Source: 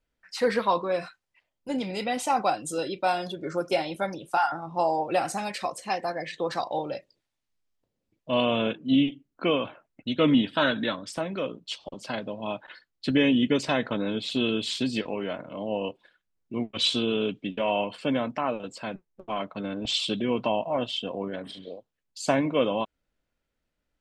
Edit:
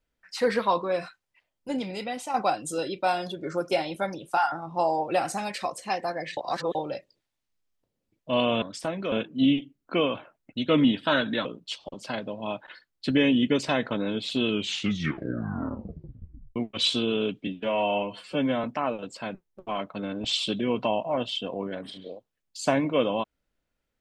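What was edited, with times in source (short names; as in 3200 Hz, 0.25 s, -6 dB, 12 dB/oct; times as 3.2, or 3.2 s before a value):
1.7–2.34 fade out, to -8.5 dB
6.37–6.75 reverse
10.95–11.45 move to 8.62
14.46 tape stop 2.10 s
17.47–18.25 stretch 1.5×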